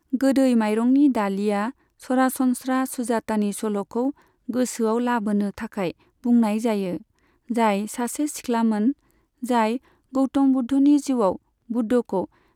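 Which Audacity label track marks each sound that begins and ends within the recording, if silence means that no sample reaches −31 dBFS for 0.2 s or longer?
2.100000	4.110000	sound
4.490000	5.910000	sound
6.240000	6.970000	sound
7.500000	8.920000	sound
9.430000	9.770000	sound
10.140000	11.360000	sound
11.700000	12.250000	sound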